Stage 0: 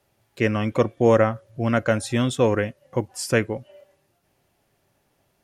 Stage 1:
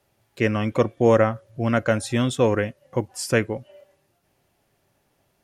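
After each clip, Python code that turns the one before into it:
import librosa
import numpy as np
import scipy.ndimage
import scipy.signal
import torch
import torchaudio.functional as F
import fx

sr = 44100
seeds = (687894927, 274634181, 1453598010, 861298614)

y = x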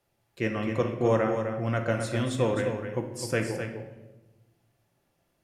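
y = x + 10.0 ** (-7.5 / 20.0) * np.pad(x, (int(256 * sr / 1000.0), 0))[:len(x)]
y = fx.room_shoebox(y, sr, seeds[0], volume_m3=500.0, walls='mixed', distance_m=0.79)
y = y * 10.0 ** (-8.0 / 20.0)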